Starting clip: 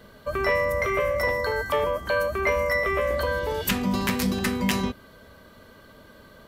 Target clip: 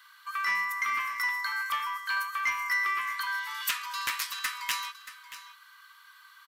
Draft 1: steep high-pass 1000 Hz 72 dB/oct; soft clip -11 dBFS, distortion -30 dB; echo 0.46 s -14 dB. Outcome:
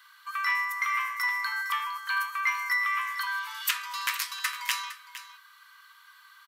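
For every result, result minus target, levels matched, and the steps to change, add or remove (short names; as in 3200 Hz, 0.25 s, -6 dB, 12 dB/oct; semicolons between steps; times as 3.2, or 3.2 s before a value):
soft clip: distortion -13 dB; echo 0.17 s early
change: soft clip -20.5 dBFS, distortion -17 dB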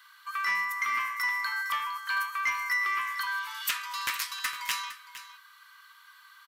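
echo 0.17 s early
change: echo 0.63 s -14 dB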